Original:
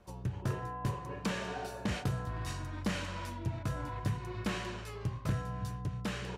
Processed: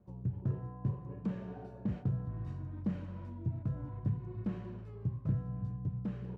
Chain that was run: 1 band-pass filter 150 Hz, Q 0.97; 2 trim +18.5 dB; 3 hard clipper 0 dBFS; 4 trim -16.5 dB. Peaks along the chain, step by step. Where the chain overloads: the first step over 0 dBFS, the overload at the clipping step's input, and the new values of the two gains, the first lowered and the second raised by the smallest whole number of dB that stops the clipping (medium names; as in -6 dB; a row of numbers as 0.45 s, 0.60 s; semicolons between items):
-24.5 dBFS, -6.0 dBFS, -6.0 dBFS, -22.5 dBFS; nothing clips